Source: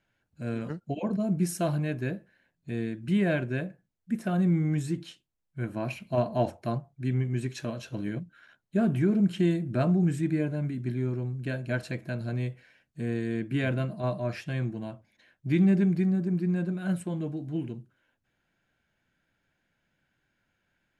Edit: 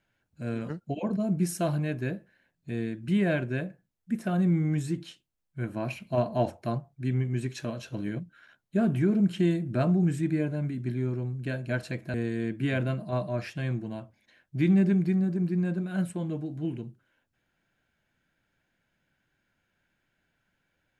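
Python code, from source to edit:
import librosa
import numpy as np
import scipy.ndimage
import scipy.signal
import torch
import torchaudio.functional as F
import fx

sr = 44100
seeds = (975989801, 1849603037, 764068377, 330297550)

y = fx.edit(x, sr, fx.cut(start_s=12.14, length_s=0.91), tone=tone)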